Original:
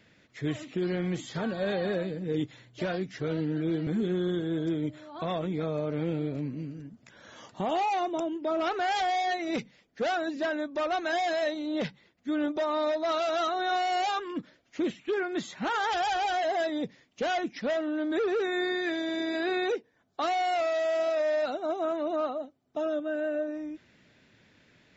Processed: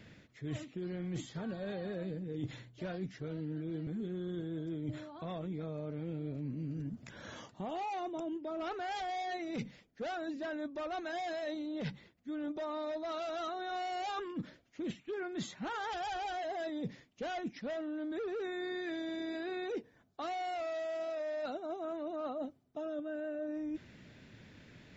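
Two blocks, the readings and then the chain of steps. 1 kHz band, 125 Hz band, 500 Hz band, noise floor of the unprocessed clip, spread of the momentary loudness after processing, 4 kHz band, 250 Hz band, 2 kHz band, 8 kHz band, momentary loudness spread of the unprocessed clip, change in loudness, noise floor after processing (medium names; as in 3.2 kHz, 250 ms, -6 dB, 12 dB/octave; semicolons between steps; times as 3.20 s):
-10.5 dB, -5.5 dB, -10.0 dB, -65 dBFS, 6 LU, -11.0 dB, -8.0 dB, -11.0 dB, no reading, 9 LU, -9.5 dB, -65 dBFS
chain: bass shelf 260 Hz +9 dB; reverse; compression 12:1, threshold -38 dBFS, peak gain reduction 17.5 dB; reverse; trim +1.5 dB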